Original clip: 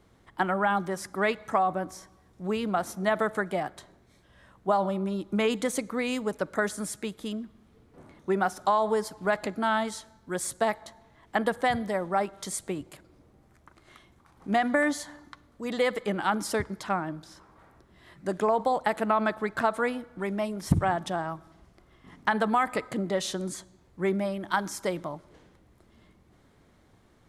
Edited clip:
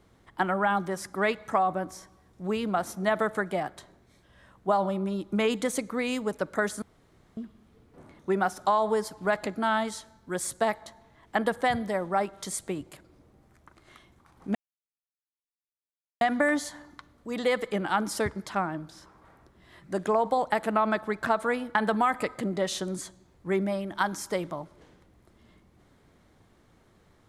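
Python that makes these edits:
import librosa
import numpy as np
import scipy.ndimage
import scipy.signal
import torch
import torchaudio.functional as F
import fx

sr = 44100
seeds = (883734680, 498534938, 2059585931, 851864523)

y = fx.edit(x, sr, fx.room_tone_fill(start_s=6.82, length_s=0.55),
    fx.insert_silence(at_s=14.55, length_s=1.66),
    fx.cut(start_s=20.09, length_s=2.19), tone=tone)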